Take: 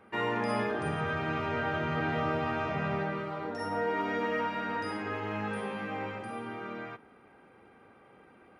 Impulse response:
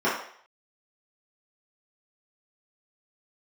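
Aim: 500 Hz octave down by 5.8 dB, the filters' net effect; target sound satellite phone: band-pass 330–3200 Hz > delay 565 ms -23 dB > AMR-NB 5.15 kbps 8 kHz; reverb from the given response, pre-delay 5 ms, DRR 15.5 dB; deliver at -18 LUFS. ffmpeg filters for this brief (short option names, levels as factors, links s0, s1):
-filter_complex "[0:a]equalizer=f=500:t=o:g=-6,asplit=2[s0][s1];[1:a]atrim=start_sample=2205,adelay=5[s2];[s1][s2]afir=irnorm=-1:irlink=0,volume=0.0266[s3];[s0][s3]amix=inputs=2:normalize=0,highpass=330,lowpass=3200,aecho=1:1:565:0.0708,volume=10" -ar 8000 -c:a libopencore_amrnb -b:a 5150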